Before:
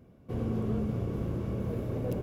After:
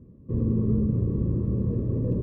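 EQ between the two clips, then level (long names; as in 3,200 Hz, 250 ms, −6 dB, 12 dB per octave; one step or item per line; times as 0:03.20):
moving average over 60 samples
+8.5 dB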